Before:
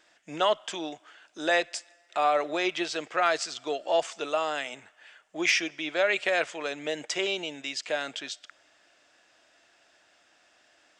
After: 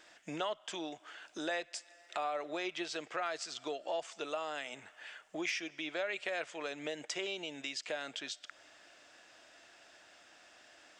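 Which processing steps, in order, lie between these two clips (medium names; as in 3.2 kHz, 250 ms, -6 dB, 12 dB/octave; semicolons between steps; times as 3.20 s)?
compression 2.5:1, threshold -45 dBFS, peak gain reduction 16.5 dB; trim +3 dB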